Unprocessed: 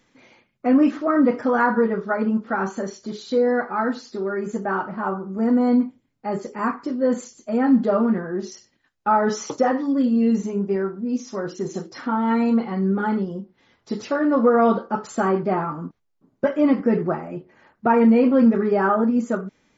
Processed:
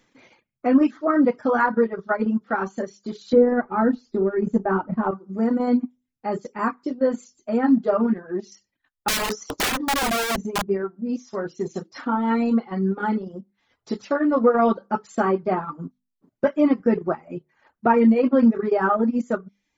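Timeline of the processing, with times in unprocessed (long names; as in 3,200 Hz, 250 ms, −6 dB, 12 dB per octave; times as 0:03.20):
0:03.33–0:05.11: spectral tilt −3.5 dB per octave
0:09.08–0:10.68: wrap-around overflow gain 17.5 dB
whole clip: mains-hum notches 50/100/150/200/250 Hz; reverb reduction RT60 0.52 s; transient designer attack +1 dB, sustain −8 dB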